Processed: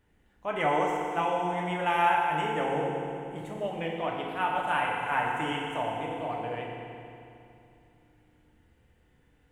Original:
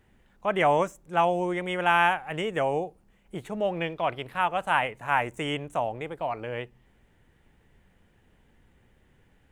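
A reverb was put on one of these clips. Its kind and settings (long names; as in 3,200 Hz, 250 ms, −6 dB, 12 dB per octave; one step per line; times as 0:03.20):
feedback delay network reverb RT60 2.7 s, low-frequency decay 1.25×, high-frequency decay 0.9×, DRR −2.5 dB
level −7 dB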